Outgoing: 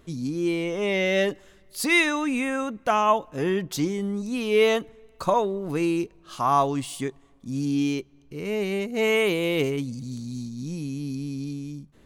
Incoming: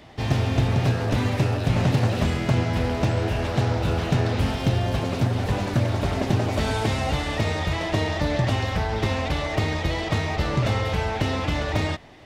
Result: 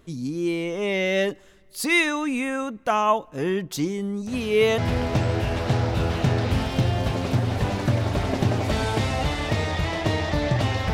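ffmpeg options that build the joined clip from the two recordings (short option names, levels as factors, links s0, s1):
-filter_complex "[1:a]asplit=2[s0][s1];[0:a]apad=whole_dur=10.93,atrim=end=10.93,atrim=end=4.782[s2];[s1]atrim=start=2.658:end=8.81[s3];[s0]atrim=start=2.15:end=2.66,asetpts=PTS-STARTPTS,volume=0.211,afade=t=in:d=0.004:c=hsin,afade=t=out:st=0.506:d=0.004:c=hsin,adelay=4270[s4];[s2][s3]acrossfade=d=0.004:c1=hsin:c2=hsin[s5];[s5][s4]amix=inputs=2:normalize=0"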